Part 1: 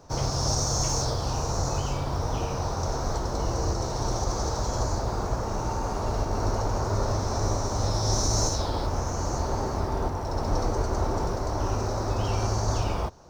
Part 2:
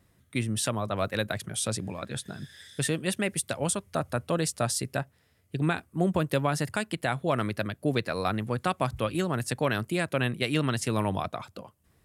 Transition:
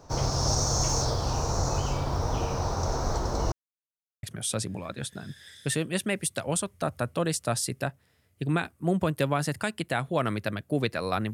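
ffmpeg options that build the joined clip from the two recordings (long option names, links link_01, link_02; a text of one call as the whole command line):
ffmpeg -i cue0.wav -i cue1.wav -filter_complex "[0:a]apad=whole_dur=11.33,atrim=end=11.33,asplit=2[link_01][link_02];[link_01]atrim=end=3.52,asetpts=PTS-STARTPTS,afade=type=out:start_time=3.516:duration=0.004:curve=hsin[link_03];[link_02]atrim=start=3.52:end=4.23,asetpts=PTS-STARTPTS,volume=0[link_04];[1:a]atrim=start=1.36:end=8.46,asetpts=PTS-STARTPTS,afade=type=in:duration=0.004:curve=hsin[link_05];[link_03][link_04][link_05]concat=n=3:v=0:a=1" out.wav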